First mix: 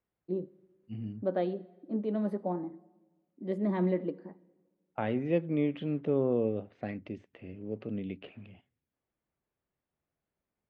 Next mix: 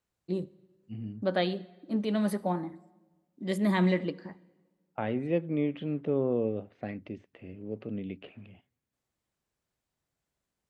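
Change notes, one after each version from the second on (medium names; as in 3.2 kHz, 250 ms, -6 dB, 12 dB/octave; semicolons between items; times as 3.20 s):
first voice: remove band-pass filter 380 Hz, Q 0.91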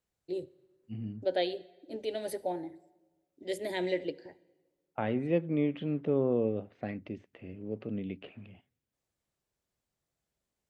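first voice: add static phaser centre 480 Hz, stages 4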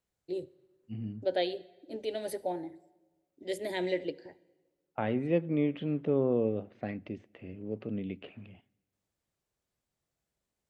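second voice: send on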